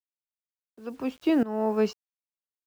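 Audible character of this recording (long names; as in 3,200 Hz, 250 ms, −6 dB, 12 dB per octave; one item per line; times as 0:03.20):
a quantiser's noise floor 10 bits, dither none
tremolo saw up 1.4 Hz, depth 90%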